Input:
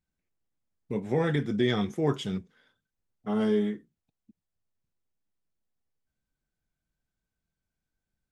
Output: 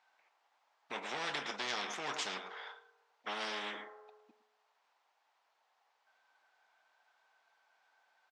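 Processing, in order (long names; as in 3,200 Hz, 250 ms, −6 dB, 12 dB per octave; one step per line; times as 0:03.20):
slap from a distant wall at 19 metres, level −18 dB
in parallel at −5 dB: hard clipping −25 dBFS, distortion −10 dB
on the sum: four-pole ladder high-pass 730 Hz, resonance 55%
high-frequency loss of the air 170 metres
on a send at −21 dB: convolution reverb RT60 1.1 s, pre-delay 3 ms
on the sum: every bin compressed towards the loudest bin 4 to 1
level +4 dB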